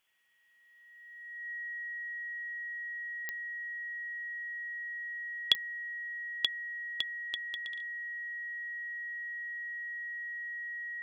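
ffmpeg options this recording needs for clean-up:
-af "adeclick=t=4,bandreject=f=1.9k:w=30,afftdn=nr=30:nf=-51"

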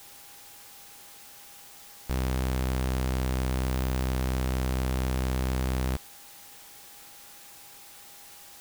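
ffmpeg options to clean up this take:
-af "bandreject=f=810:w=30,afftdn=nr=28:nf=-49"

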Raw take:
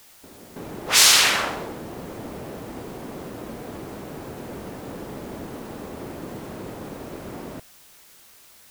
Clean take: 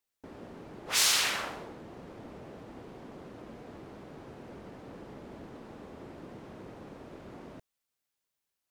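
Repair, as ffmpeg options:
-af "afwtdn=0.0028,asetnsamples=n=441:p=0,asendcmd='0.56 volume volume -11dB',volume=0dB"

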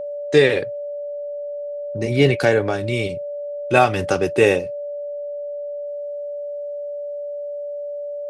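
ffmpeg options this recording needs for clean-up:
-af "bandreject=f=580:w=30"

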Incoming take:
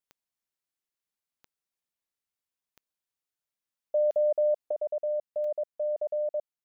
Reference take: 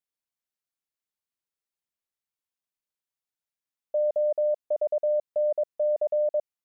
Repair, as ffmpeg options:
-af "adeclick=t=4,asetnsamples=n=441:p=0,asendcmd='4.71 volume volume 5dB',volume=0dB"

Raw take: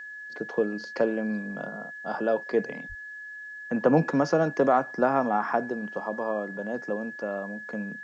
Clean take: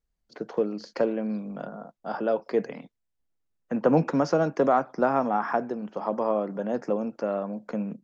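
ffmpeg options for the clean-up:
-filter_complex "[0:a]bandreject=f=1.7k:w=30,asplit=3[a][b][c];[a]afade=t=out:st=2.88:d=0.02[d];[b]highpass=f=140:w=0.5412,highpass=f=140:w=1.3066,afade=t=in:st=2.88:d=0.02,afade=t=out:st=3:d=0.02[e];[c]afade=t=in:st=3:d=0.02[f];[d][e][f]amix=inputs=3:normalize=0,agate=range=-21dB:threshold=-33dB,asetnsamples=n=441:p=0,asendcmd='6 volume volume 4dB',volume=0dB"

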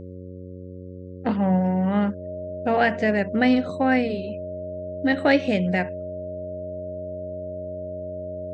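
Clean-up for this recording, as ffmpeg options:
-af "bandreject=f=91.5:t=h:w=4,bandreject=f=183:t=h:w=4,bandreject=f=274.5:t=h:w=4,bandreject=f=366:t=h:w=4,bandreject=f=457.5:t=h:w=4,bandreject=f=549:t=h:w=4,bandreject=f=620:w=30"

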